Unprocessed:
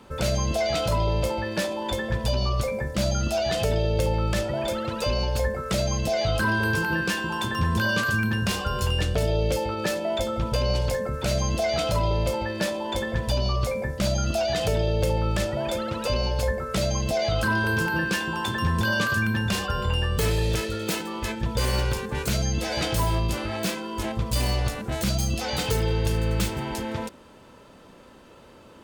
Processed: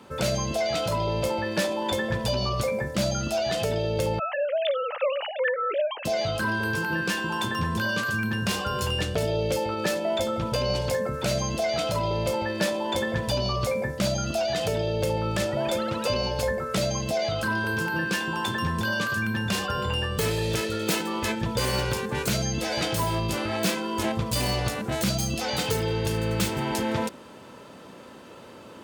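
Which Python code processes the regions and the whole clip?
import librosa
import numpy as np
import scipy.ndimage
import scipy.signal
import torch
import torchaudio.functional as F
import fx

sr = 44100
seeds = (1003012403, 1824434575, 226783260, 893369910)

y = fx.chain(x, sr, fx.sine_speech(),
    fx.highpass(hz=360.0, slope=12), at=(4.19, 6.05))
y = scipy.signal.sosfilt(scipy.signal.butter(2, 110.0, 'highpass', fs=sr, output='sos'), y)
y = fx.rider(y, sr, range_db=10, speed_s=0.5)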